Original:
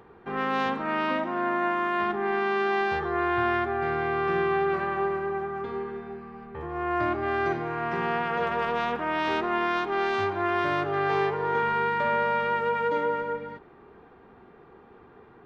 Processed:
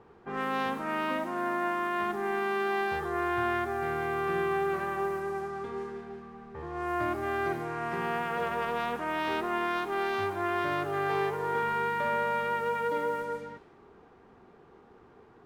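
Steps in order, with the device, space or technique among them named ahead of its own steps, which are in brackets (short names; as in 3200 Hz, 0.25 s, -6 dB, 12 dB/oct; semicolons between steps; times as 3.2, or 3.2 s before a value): cassette deck with a dynamic noise filter (white noise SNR 27 dB; low-pass opened by the level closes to 1400 Hz, open at -23.5 dBFS); gain -4 dB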